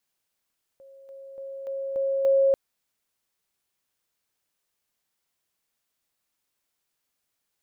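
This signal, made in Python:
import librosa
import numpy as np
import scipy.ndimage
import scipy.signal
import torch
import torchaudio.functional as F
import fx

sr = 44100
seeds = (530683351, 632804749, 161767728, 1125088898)

y = fx.level_ladder(sr, hz=544.0, from_db=-46.5, step_db=6.0, steps=6, dwell_s=0.29, gap_s=0.0)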